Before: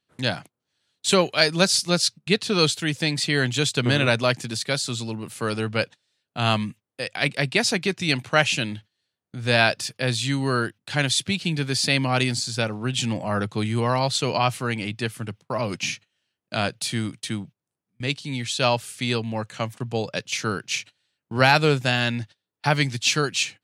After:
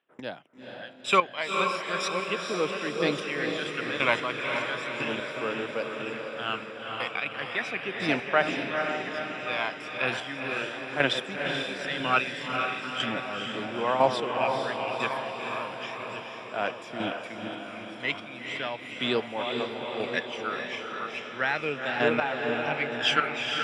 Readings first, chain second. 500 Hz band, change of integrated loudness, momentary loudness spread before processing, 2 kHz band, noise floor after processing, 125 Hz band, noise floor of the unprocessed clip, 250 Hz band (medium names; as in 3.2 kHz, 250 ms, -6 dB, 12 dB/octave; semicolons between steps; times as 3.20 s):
-3.5 dB, -5.5 dB, 11 LU, -3.5 dB, -42 dBFS, -17.0 dB, -85 dBFS, -8.0 dB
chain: backward echo that repeats 561 ms, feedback 64%, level -10 dB; high-pass 420 Hz 12 dB/octave; phaser 0.36 Hz, delay 1 ms, feedback 60%; Savitzky-Golay filter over 25 samples; square tremolo 1 Hz, depth 65%, duty 20%; on a send: echo that smears into a reverb 465 ms, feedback 58%, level -4 dB